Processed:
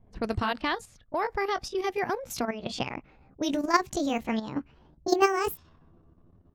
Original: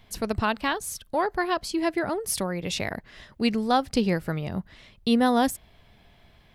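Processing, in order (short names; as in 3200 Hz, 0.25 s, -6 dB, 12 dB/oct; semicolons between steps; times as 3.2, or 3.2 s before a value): gliding pitch shift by +9.5 st starting unshifted; low-pass opened by the level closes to 510 Hz, open at -23.5 dBFS; level quantiser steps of 10 dB; gain +3 dB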